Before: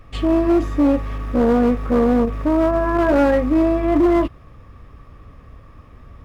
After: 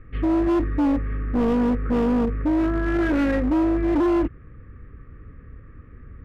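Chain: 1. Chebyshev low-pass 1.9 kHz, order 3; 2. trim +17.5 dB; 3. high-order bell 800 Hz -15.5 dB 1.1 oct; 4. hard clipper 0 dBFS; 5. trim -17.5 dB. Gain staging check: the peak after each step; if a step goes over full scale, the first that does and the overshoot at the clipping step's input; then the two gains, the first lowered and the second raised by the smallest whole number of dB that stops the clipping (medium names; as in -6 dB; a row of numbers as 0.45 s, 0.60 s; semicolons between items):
-10.0 dBFS, +7.5 dBFS, +8.5 dBFS, 0.0 dBFS, -17.5 dBFS; step 2, 8.5 dB; step 2 +8.5 dB, step 5 -8.5 dB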